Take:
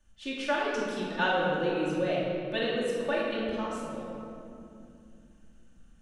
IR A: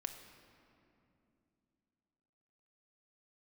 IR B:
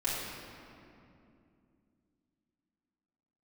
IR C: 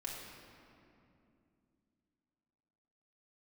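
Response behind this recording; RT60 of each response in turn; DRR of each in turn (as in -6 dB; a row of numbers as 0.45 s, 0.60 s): B; 2.8 s, 2.7 s, 2.7 s; 6.0 dB, -9.5 dB, -3.5 dB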